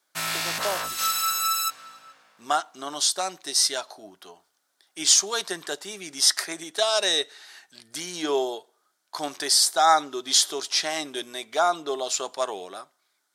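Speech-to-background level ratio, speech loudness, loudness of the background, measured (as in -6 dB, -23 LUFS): 1.0 dB, -24.0 LUFS, -25.0 LUFS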